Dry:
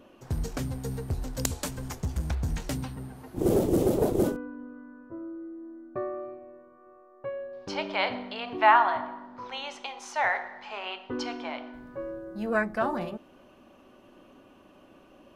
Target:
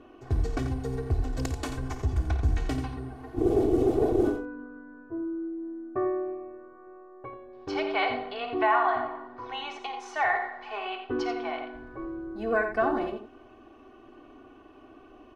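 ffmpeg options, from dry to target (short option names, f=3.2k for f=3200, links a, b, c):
-af "aemphasis=mode=reproduction:type=75fm,aecho=1:1:2.7:0.87,alimiter=limit=-15.5dB:level=0:latency=1:release=177,aecho=1:1:54|87:0.251|0.355"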